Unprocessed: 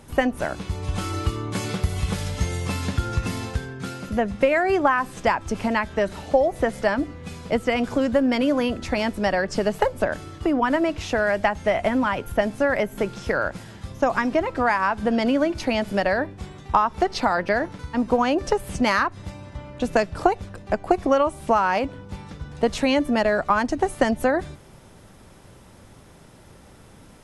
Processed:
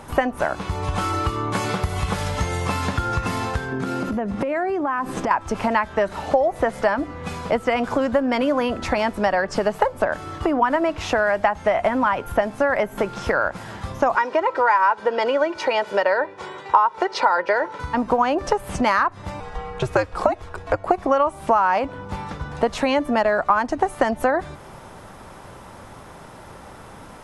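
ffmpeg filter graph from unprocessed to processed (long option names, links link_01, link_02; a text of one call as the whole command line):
ffmpeg -i in.wav -filter_complex "[0:a]asettb=1/sr,asplit=3[link_01][link_02][link_03];[link_01]atrim=end=3.724[link_04];[link_02]atrim=start=3.72:end=5.31,asetpts=PTS-STARTPTS,afade=type=in:duration=0.004:curve=qsin,afade=type=out:start_time=1.586:duration=0.004:curve=qsin,equalizer=frequency=280:width_type=o:width=1.5:gain=11,acompressor=threshold=-25dB:ratio=10:attack=3.2:release=140:knee=1:detection=peak[link_05];[link_03]atrim=start=5.306[link_06];[link_04][link_05]acrossfade=duration=0.004:curve1=hsin:curve2=qsin[link_07];[link_07][link_06]acrossfade=duration=0.004:curve1=qsin:curve2=hsin,asettb=1/sr,asplit=3[link_08][link_09][link_10];[link_08]atrim=end=14.154[link_11];[link_09]atrim=start=14.15:end=17.8,asetpts=PTS-STARTPTS,afade=type=in:duration=0.004:curve=qsin,afade=type=out:start_time=3.646:duration=0.004:curve=qsin,highpass=300,lowpass=7100,aecho=1:1:2.1:0.62,atrim=end_sample=160965[link_12];[link_10]atrim=start=17.796[link_13];[link_11][link_12]acrossfade=duration=0.004:curve1=hsin:curve2=qsin[link_14];[link_14][link_13]acrossfade=duration=0.004:curve1=qsin:curve2=hsin,asettb=1/sr,asplit=3[link_15][link_16][link_17];[link_15]atrim=end=19.404[link_18];[link_16]atrim=start=19.4:end=20.86,asetpts=PTS-STARTPTS,afade=type=in:duration=0.004:curve=qsin,afade=type=out:start_time=1.456:duration=0.004:curve=qsin,bandreject=frequency=360:width=5.2,afreqshift=-110[link_19];[link_17]atrim=start=20.856[link_20];[link_18][link_19]acrossfade=duration=0.004:curve1=hsin:curve2=qsin[link_21];[link_21][link_20]acrossfade=duration=0.004:curve1=qsin:curve2=hsin,equalizer=frequency=1000:width_type=o:width=1.9:gain=10.5,acompressor=threshold=-26dB:ratio=2,volume=3.5dB" out.wav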